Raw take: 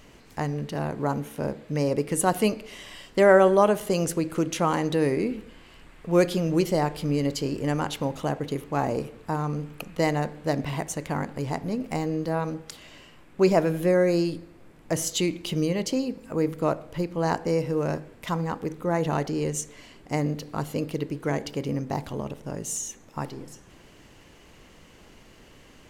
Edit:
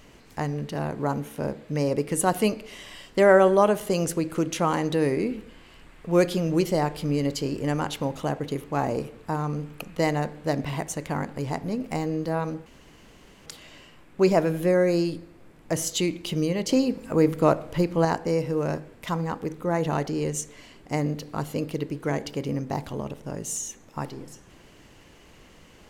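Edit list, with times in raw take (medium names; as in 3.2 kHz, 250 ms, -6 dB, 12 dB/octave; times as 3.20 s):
12.66 s: insert room tone 0.80 s
15.89–17.25 s: gain +5 dB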